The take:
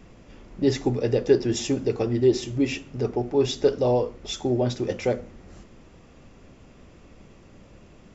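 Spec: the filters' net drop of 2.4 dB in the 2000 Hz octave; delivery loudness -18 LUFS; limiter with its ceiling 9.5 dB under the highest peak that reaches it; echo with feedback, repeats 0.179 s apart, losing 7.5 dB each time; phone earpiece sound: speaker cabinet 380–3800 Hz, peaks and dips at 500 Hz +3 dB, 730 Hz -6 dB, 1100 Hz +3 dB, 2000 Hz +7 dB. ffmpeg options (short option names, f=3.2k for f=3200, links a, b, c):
-af "equalizer=f=2k:t=o:g=-7,alimiter=limit=-16dB:level=0:latency=1,highpass=380,equalizer=f=500:t=q:w=4:g=3,equalizer=f=730:t=q:w=4:g=-6,equalizer=f=1.1k:t=q:w=4:g=3,equalizer=f=2k:t=q:w=4:g=7,lowpass=f=3.8k:w=0.5412,lowpass=f=3.8k:w=1.3066,aecho=1:1:179|358|537|716|895:0.422|0.177|0.0744|0.0312|0.0131,volume=11.5dB"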